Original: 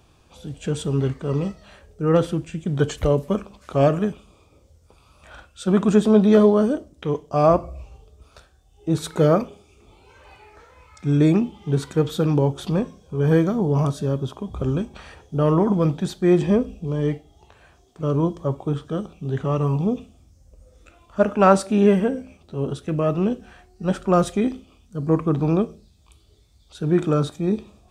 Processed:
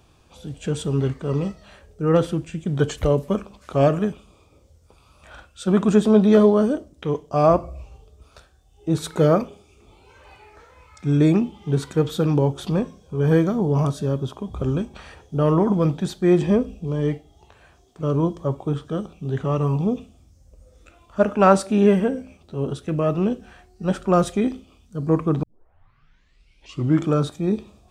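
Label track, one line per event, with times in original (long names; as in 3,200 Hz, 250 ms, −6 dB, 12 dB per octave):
25.430000	25.430000	tape start 1.70 s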